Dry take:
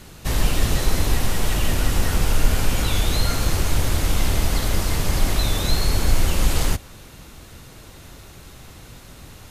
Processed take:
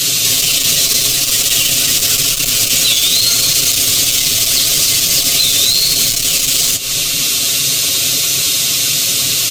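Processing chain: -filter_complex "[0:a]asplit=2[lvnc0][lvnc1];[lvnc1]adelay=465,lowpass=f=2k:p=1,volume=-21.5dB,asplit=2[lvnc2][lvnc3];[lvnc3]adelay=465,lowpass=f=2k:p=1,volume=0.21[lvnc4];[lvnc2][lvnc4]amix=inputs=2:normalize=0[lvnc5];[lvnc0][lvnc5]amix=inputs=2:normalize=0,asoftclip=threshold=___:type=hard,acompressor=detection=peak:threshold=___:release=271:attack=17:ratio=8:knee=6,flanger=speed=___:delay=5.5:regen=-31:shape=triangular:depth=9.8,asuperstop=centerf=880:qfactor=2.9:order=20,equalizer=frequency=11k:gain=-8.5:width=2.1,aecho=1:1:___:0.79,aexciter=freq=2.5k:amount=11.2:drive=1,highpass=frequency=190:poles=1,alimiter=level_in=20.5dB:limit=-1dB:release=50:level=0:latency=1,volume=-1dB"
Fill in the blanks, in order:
-15.5dB, -33dB, 0.85, 7.3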